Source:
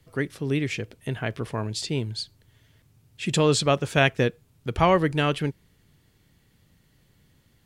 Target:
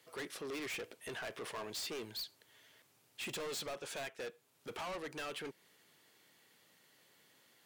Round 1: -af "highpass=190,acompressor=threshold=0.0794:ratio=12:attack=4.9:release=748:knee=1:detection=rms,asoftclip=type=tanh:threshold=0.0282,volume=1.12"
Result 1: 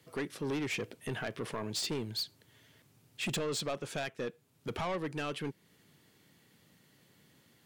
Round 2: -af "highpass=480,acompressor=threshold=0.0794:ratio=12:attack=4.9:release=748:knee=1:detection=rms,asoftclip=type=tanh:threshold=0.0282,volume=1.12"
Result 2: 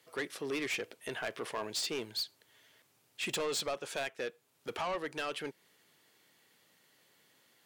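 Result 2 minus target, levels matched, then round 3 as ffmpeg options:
saturation: distortion -5 dB
-af "highpass=480,acompressor=threshold=0.0794:ratio=12:attack=4.9:release=748:knee=1:detection=rms,asoftclip=type=tanh:threshold=0.00944,volume=1.12"

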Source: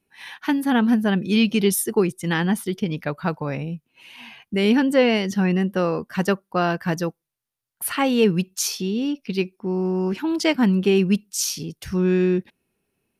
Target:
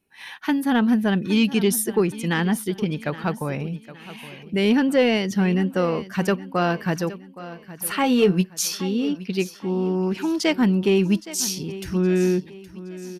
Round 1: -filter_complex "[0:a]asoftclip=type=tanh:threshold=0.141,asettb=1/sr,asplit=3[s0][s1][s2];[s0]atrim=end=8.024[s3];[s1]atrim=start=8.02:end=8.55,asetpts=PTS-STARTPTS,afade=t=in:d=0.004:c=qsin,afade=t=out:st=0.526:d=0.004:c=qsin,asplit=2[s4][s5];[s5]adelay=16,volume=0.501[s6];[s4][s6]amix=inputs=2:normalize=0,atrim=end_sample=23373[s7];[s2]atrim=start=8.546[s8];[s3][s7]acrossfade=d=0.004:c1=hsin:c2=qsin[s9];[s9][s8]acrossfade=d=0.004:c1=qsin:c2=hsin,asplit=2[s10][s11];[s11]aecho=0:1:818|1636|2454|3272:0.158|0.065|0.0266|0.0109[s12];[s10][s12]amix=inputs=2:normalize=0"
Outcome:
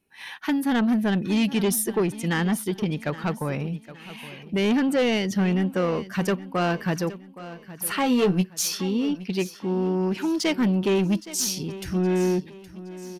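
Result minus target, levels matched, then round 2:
saturation: distortion +12 dB
-filter_complex "[0:a]asoftclip=type=tanh:threshold=0.398,asettb=1/sr,asplit=3[s0][s1][s2];[s0]atrim=end=8.024[s3];[s1]atrim=start=8.02:end=8.55,asetpts=PTS-STARTPTS,afade=t=in:d=0.004:c=qsin,afade=t=out:st=0.526:d=0.004:c=qsin,asplit=2[s4][s5];[s5]adelay=16,volume=0.501[s6];[s4][s6]amix=inputs=2:normalize=0,atrim=end_sample=23373[s7];[s2]atrim=start=8.546[s8];[s3][s7]acrossfade=d=0.004:c1=hsin:c2=qsin[s9];[s9][s8]acrossfade=d=0.004:c1=qsin:c2=hsin,asplit=2[s10][s11];[s11]aecho=0:1:818|1636|2454|3272:0.158|0.065|0.0266|0.0109[s12];[s10][s12]amix=inputs=2:normalize=0"

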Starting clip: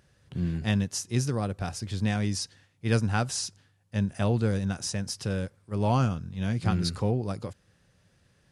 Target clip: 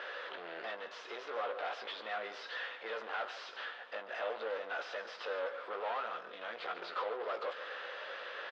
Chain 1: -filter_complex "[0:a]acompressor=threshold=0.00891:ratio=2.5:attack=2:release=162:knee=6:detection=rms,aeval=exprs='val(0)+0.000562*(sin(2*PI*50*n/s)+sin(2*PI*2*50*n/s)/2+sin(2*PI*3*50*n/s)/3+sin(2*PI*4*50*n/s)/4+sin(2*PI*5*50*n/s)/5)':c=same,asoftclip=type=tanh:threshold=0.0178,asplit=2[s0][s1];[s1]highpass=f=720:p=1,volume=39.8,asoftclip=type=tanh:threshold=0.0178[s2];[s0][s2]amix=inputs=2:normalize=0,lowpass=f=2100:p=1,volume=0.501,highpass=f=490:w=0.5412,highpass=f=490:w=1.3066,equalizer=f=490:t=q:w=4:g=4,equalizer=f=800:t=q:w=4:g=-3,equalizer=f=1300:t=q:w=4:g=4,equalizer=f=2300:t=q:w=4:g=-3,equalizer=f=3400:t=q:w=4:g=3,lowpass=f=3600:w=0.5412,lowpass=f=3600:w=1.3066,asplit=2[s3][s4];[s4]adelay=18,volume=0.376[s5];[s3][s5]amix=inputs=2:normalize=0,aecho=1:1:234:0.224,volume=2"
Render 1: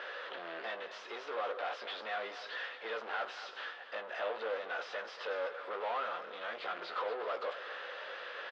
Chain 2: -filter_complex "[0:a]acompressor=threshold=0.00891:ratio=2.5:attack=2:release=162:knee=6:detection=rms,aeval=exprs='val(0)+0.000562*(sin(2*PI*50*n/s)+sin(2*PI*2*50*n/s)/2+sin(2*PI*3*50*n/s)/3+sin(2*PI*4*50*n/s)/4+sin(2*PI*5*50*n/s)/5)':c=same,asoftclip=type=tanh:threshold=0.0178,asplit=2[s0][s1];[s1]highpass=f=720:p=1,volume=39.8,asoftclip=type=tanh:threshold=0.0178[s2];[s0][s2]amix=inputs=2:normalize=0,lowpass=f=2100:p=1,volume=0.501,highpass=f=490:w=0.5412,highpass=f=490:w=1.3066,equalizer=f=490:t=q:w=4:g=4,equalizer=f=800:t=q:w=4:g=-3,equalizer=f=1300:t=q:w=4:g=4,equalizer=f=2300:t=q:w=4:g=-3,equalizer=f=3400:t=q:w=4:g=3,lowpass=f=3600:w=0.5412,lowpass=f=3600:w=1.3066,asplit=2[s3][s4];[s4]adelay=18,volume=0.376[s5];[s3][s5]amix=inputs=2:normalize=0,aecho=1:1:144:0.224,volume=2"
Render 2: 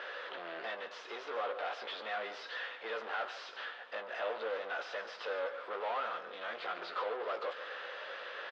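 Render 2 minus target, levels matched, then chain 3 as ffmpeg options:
saturation: distortion -6 dB
-filter_complex "[0:a]acompressor=threshold=0.00891:ratio=2.5:attack=2:release=162:knee=6:detection=rms,aeval=exprs='val(0)+0.000562*(sin(2*PI*50*n/s)+sin(2*PI*2*50*n/s)/2+sin(2*PI*3*50*n/s)/3+sin(2*PI*4*50*n/s)/4+sin(2*PI*5*50*n/s)/5)':c=same,asoftclip=type=tanh:threshold=0.00891,asplit=2[s0][s1];[s1]highpass=f=720:p=1,volume=39.8,asoftclip=type=tanh:threshold=0.0178[s2];[s0][s2]amix=inputs=2:normalize=0,lowpass=f=2100:p=1,volume=0.501,highpass=f=490:w=0.5412,highpass=f=490:w=1.3066,equalizer=f=490:t=q:w=4:g=4,equalizer=f=800:t=q:w=4:g=-3,equalizer=f=1300:t=q:w=4:g=4,equalizer=f=2300:t=q:w=4:g=-3,equalizer=f=3400:t=q:w=4:g=3,lowpass=f=3600:w=0.5412,lowpass=f=3600:w=1.3066,asplit=2[s3][s4];[s4]adelay=18,volume=0.376[s5];[s3][s5]amix=inputs=2:normalize=0,aecho=1:1:144:0.224,volume=2"

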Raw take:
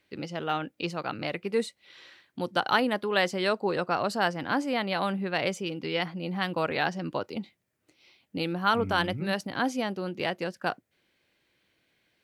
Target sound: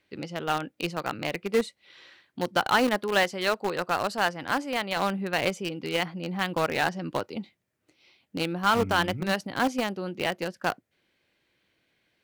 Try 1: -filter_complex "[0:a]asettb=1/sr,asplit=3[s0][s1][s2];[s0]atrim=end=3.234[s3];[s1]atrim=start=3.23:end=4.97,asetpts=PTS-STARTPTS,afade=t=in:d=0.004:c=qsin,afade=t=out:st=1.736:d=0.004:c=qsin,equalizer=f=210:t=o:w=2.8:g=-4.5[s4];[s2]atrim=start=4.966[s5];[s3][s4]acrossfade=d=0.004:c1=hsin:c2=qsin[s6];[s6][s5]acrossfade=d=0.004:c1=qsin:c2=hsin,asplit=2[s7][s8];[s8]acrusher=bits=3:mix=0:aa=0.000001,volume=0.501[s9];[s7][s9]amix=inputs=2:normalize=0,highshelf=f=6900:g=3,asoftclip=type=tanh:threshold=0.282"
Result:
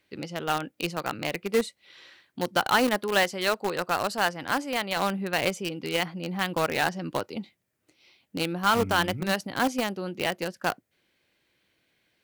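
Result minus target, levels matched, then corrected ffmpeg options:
8 kHz band +3.5 dB
-filter_complex "[0:a]asettb=1/sr,asplit=3[s0][s1][s2];[s0]atrim=end=3.234[s3];[s1]atrim=start=3.23:end=4.97,asetpts=PTS-STARTPTS,afade=t=in:d=0.004:c=qsin,afade=t=out:st=1.736:d=0.004:c=qsin,equalizer=f=210:t=o:w=2.8:g=-4.5[s4];[s2]atrim=start=4.966[s5];[s3][s4]acrossfade=d=0.004:c1=hsin:c2=qsin[s6];[s6][s5]acrossfade=d=0.004:c1=qsin:c2=hsin,asplit=2[s7][s8];[s8]acrusher=bits=3:mix=0:aa=0.000001,volume=0.501[s9];[s7][s9]amix=inputs=2:normalize=0,highshelf=f=6900:g=-4,asoftclip=type=tanh:threshold=0.282"

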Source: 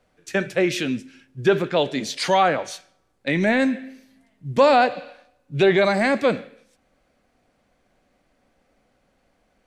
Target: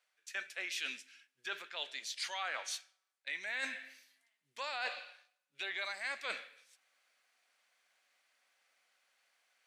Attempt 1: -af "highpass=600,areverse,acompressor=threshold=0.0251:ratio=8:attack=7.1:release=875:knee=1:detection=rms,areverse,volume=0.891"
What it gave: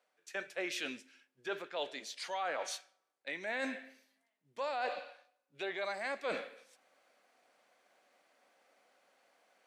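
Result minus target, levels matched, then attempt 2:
500 Hz band +10.5 dB
-af "highpass=1700,areverse,acompressor=threshold=0.0251:ratio=8:attack=7.1:release=875:knee=1:detection=rms,areverse,volume=0.891"

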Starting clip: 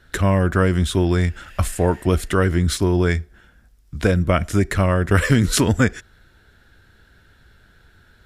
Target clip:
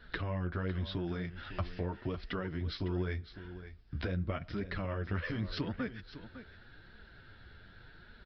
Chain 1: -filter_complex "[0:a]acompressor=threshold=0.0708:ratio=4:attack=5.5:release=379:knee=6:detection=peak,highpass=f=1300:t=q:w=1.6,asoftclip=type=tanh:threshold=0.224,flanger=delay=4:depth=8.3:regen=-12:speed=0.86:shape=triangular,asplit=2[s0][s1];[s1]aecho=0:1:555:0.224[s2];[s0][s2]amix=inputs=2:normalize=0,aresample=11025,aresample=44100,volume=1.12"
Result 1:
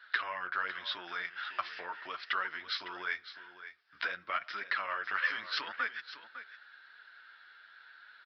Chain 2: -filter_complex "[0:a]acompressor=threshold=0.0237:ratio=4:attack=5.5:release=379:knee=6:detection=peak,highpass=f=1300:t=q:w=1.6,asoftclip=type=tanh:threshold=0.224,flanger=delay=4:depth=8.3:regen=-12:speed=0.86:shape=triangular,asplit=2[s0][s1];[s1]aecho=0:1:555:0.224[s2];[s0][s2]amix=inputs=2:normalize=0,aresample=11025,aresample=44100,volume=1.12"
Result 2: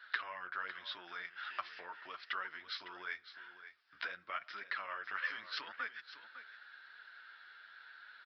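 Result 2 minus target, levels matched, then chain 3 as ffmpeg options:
1 kHz band +7.0 dB
-filter_complex "[0:a]acompressor=threshold=0.0237:ratio=4:attack=5.5:release=379:knee=6:detection=peak,asoftclip=type=tanh:threshold=0.224,flanger=delay=4:depth=8.3:regen=-12:speed=0.86:shape=triangular,asplit=2[s0][s1];[s1]aecho=0:1:555:0.224[s2];[s0][s2]amix=inputs=2:normalize=0,aresample=11025,aresample=44100,volume=1.12"

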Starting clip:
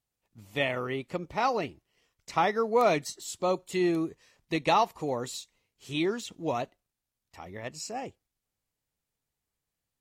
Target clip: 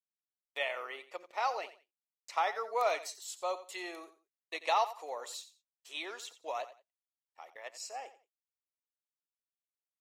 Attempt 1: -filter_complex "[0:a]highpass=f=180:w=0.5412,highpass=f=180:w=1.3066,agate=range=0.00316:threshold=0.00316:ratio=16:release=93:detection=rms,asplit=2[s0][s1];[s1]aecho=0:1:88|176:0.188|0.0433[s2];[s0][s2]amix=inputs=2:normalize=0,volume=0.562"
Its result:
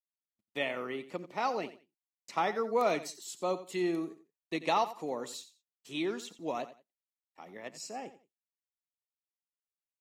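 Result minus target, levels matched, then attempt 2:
250 Hz band +16.0 dB
-filter_complex "[0:a]highpass=f=560:w=0.5412,highpass=f=560:w=1.3066,agate=range=0.00316:threshold=0.00316:ratio=16:release=93:detection=rms,asplit=2[s0][s1];[s1]aecho=0:1:88|176:0.188|0.0433[s2];[s0][s2]amix=inputs=2:normalize=0,volume=0.562"

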